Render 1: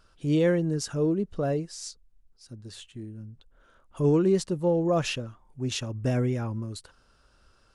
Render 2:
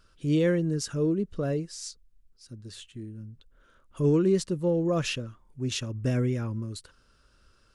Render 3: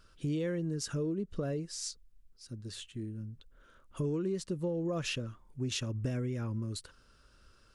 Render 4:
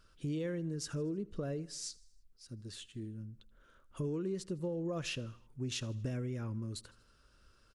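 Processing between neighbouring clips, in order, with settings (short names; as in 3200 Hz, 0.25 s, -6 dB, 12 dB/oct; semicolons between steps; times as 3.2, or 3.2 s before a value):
bell 780 Hz -9 dB 0.65 oct
compressor 6:1, threshold -31 dBFS, peak gain reduction 12 dB
feedback echo 79 ms, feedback 54%, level -22.5 dB; gain -3.5 dB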